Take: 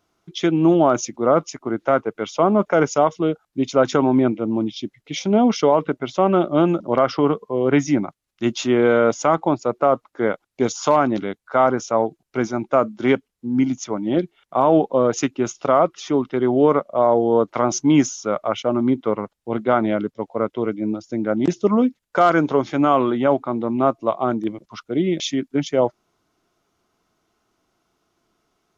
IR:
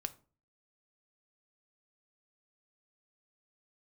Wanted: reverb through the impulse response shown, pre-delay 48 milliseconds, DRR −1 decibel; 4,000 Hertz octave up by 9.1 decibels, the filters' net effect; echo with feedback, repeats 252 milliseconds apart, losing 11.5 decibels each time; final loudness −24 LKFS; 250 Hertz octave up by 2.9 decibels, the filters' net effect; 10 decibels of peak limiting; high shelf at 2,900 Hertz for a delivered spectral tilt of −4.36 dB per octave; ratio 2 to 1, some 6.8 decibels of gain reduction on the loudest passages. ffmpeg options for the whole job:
-filter_complex "[0:a]equalizer=frequency=250:width_type=o:gain=3.5,highshelf=frequency=2900:gain=5.5,equalizer=frequency=4000:width_type=o:gain=7.5,acompressor=threshold=-21dB:ratio=2,alimiter=limit=-16dB:level=0:latency=1,aecho=1:1:252|504|756:0.266|0.0718|0.0194,asplit=2[link_01][link_02];[1:a]atrim=start_sample=2205,adelay=48[link_03];[link_02][link_03]afir=irnorm=-1:irlink=0,volume=2.5dB[link_04];[link_01][link_04]amix=inputs=2:normalize=0,volume=-2dB"

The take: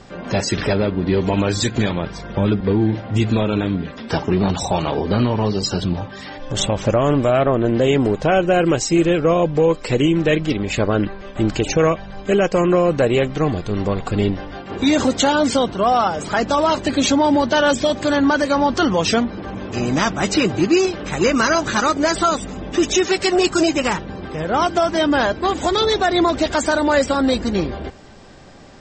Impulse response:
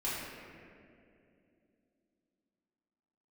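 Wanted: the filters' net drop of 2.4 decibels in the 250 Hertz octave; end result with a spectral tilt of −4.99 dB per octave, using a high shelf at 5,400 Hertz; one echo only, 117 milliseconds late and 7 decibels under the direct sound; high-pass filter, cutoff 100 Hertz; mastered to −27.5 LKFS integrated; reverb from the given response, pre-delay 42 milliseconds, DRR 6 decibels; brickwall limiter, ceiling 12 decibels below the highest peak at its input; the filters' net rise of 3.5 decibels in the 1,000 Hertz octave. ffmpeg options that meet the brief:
-filter_complex "[0:a]highpass=100,equalizer=frequency=250:width_type=o:gain=-3.5,equalizer=frequency=1000:width_type=o:gain=5,highshelf=frequency=5400:gain=-3.5,alimiter=limit=-14.5dB:level=0:latency=1,aecho=1:1:117:0.447,asplit=2[link_01][link_02];[1:a]atrim=start_sample=2205,adelay=42[link_03];[link_02][link_03]afir=irnorm=-1:irlink=0,volume=-12dB[link_04];[link_01][link_04]amix=inputs=2:normalize=0,volume=-5dB"

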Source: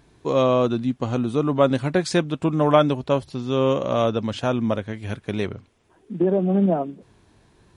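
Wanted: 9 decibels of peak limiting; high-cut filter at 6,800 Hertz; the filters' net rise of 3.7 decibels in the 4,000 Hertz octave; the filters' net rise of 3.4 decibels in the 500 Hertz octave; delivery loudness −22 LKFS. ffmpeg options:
ffmpeg -i in.wav -af "lowpass=6800,equalizer=frequency=500:width_type=o:gain=4,equalizer=frequency=4000:width_type=o:gain=5,alimiter=limit=-9.5dB:level=0:latency=1" out.wav

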